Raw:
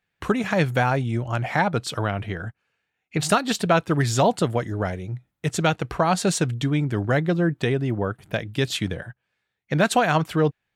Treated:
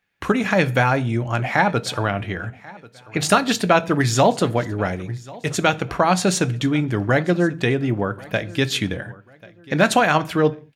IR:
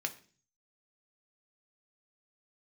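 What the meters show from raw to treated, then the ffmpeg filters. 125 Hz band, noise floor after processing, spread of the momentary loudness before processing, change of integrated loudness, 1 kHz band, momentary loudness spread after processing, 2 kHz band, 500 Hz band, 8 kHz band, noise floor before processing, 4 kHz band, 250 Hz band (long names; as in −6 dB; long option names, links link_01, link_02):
+1.0 dB, −49 dBFS, 10 LU, +3.0 dB, +3.5 dB, 10 LU, +5.0 dB, +3.0 dB, +3.0 dB, −79 dBFS, +4.0 dB, +3.0 dB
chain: -filter_complex "[0:a]aecho=1:1:1089|2178:0.0794|0.0254,asplit=2[link_01][link_02];[1:a]atrim=start_sample=2205,afade=type=out:start_time=0.28:duration=0.01,atrim=end_sample=12789[link_03];[link_02][link_03]afir=irnorm=-1:irlink=0,volume=-2.5dB[link_04];[link_01][link_04]amix=inputs=2:normalize=0,volume=-1dB"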